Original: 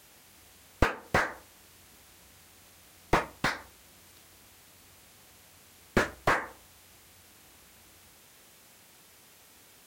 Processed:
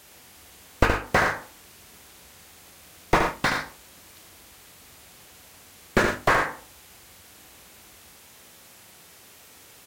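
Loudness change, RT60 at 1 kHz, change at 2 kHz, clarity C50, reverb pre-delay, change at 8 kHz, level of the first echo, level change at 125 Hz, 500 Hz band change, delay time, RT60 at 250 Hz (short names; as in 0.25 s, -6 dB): +6.0 dB, none, +6.5 dB, none, none, +6.5 dB, -5.5 dB, +5.5 dB, +6.0 dB, 73 ms, none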